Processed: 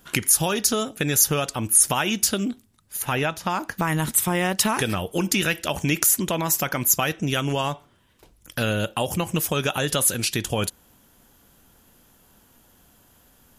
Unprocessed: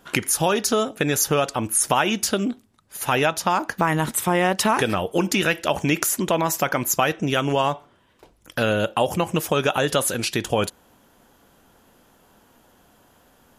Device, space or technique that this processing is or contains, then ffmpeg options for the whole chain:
smiley-face EQ: -filter_complex "[0:a]lowshelf=f=120:g=4.5,equalizer=f=660:t=o:w=2.7:g=-6,highshelf=f=8.5k:g=8,asettb=1/sr,asplit=3[a][b][c];[a]atrim=end=3.024[d];[b]atrim=start=3.02:end=3.78,asetpts=PTS-STARTPTS,afade=t=in:d=0.004:c=qsin,afade=t=out:st=0.756:d=0.004:c=qsin,acrossover=split=2800[e][f];[f]acompressor=threshold=-35dB:ratio=4:attack=1:release=60[g];[e][g]amix=inputs=2:normalize=0[h];[c]atrim=start=3.776[i];[d][h]acrossfade=d=0.004:c1=hsin:c2=qsin[j];[j][i]acrossfade=d=0.004:c1=qsin:c2=hsin"

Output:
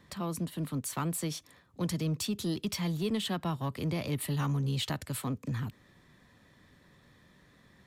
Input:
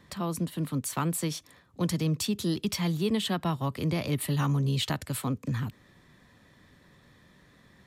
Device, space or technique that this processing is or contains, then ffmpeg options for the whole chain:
parallel distortion: -filter_complex "[0:a]asplit=2[a][b];[b]asoftclip=type=hard:threshold=-31dB,volume=-8dB[c];[a][c]amix=inputs=2:normalize=0,volume=-5.5dB"

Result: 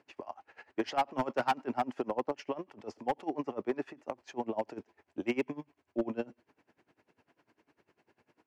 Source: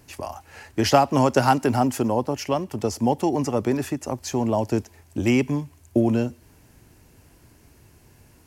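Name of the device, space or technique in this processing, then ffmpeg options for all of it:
helicopter radio: -af "highpass=320,lowpass=2.6k,aeval=exprs='val(0)*pow(10,-23*(0.5-0.5*cos(2*PI*10*n/s))/20)':c=same,asoftclip=type=hard:threshold=-19dB,volume=-3.5dB"

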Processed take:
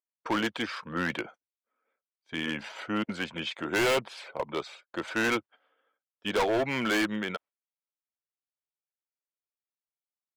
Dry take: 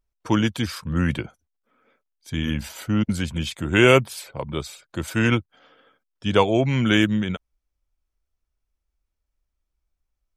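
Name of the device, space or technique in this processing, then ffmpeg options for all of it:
walkie-talkie: -af "highpass=440,lowpass=2.7k,asoftclip=type=hard:threshold=-25dB,agate=range=-17dB:threshold=-51dB:ratio=16:detection=peak,volume=2dB"

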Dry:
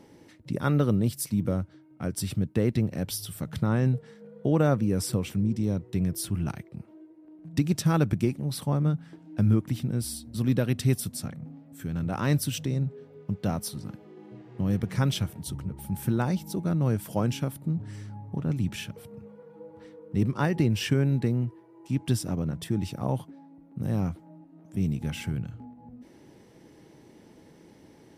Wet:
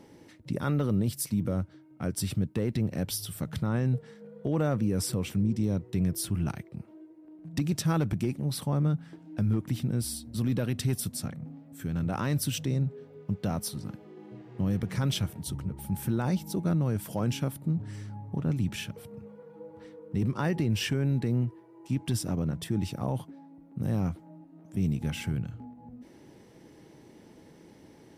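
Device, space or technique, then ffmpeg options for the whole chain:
clipper into limiter: -af "asoftclip=type=hard:threshold=-14dB,alimiter=limit=-19.5dB:level=0:latency=1:release=16"

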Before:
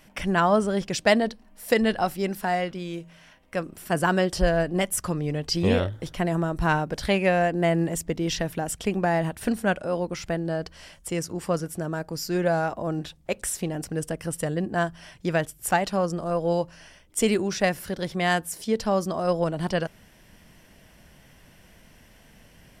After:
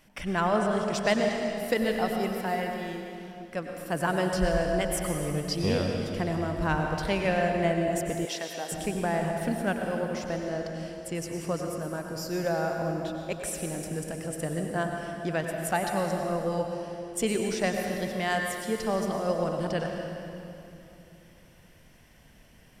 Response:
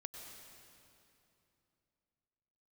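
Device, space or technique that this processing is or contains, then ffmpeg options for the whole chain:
stairwell: -filter_complex "[1:a]atrim=start_sample=2205[a];[0:a][a]afir=irnorm=-1:irlink=0,asettb=1/sr,asplit=3[b][c][d];[b]atrim=end=8.254[e];[c]atrim=start=8.25:end=8.72,asetpts=PTS-STARTPTS,afade=t=in:d=0.004:c=qsin,afade=t=out:st=0.466:d=0.004:c=qsin,highpass=460[f];[d]atrim=start=8.716[g];[e][f]acrossfade=d=0.004:c1=hsin:c2=qsin[h];[h][g]acrossfade=d=0.004:c1=qsin:c2=hsin"

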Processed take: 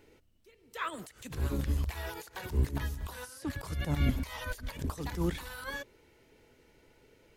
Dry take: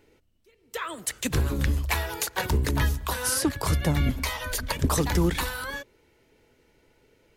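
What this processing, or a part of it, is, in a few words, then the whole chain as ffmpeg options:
de-esser from a sidechain: -filter_complex "[0:a]asplit=2[a][b];[b]highpass=5.7k,apad=whole_len=324650[c];[a][c]sidechaincompress=threshold=-47dB:ratio=10:attack=0.63:release=68"

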